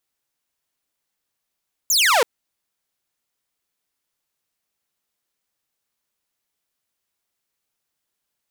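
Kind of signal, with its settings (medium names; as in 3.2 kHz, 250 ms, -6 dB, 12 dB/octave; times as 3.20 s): laser zap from 7.5 kHz, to 430 Hz, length 0.33 s saw, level -11 dB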